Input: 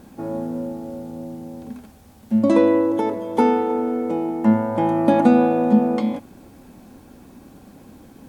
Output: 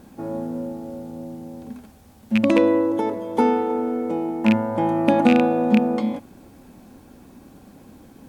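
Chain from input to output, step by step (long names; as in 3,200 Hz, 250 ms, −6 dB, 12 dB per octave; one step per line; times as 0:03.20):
loose part that buzzes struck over −17 dBFS, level −9 dBFS
level −1.5 dB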